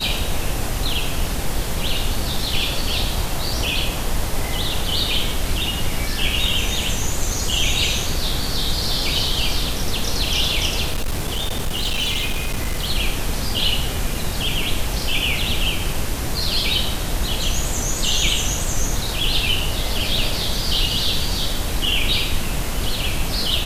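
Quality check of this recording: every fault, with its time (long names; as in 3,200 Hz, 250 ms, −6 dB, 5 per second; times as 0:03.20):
0:10.91–0:12.87: clipping −17.5 dBFS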